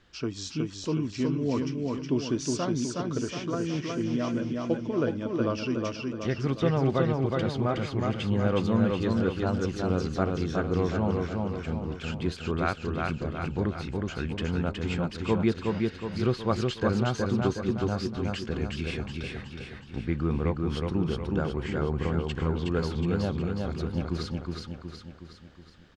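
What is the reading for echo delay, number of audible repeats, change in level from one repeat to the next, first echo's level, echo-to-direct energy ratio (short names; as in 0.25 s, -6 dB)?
0.367 s, 6, -6.0 dB, -3.0 dB, -1.5 dB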